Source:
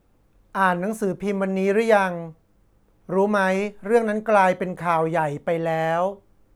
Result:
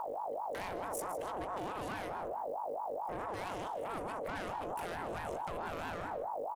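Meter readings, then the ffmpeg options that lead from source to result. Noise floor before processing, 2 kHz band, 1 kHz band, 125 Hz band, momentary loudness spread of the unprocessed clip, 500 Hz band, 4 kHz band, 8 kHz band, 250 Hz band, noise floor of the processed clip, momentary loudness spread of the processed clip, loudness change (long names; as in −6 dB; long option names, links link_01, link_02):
−61 dBFS, −19.0 dB, −14.0 dB, −20.0 dB, 8 LU, −18.0 dB, −11.5 dB, −7.5 dB, −21.0 dB, −41 dBFS, 1 LU, −17.5 dB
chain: -filter_complex "[0:a]highpass=frequency=86:width=0.5412,highpass=frequency=86:width=1.3066,aeval=exprs='val(0)+0.0282*(sin(2*PI*50*n/s)+sin(2*PI*2*50*n/s)/2+sin(2*PI*3*50*n/s)/3+sin(2*PI*4*50*n/s)/4+sin(2*PI*5*50*n/s)/5)':channel_layout=same,acrossover=split=190[link_01][link_02];[link_02]acompressor=threshold=-33dB:ratio=3[link_03];[link_01][link_03]amix=inputs=2:normalize=0,aeval=exprs='(tanh(31.6*val(0)+0.45)-tanh(0.45))/31.6':channel_layout=same,alimiter=level_in=18dB:limit=-24dB:level=0:latency=1,volume=-18dB,crystalizer=i=2.5:c=0,asplit=2[link_04][link_05];[link_05]aecho=0:1:157:0.237[link_06];[link_04][link_06]amix=inputs=2:normalize=0,aeval=exprs='val(0)*sin(2*PI*710*n/s+710*0.3/4.6*sin(2*PI*4.6*n/s))':channel_layout=same,volume=10dB"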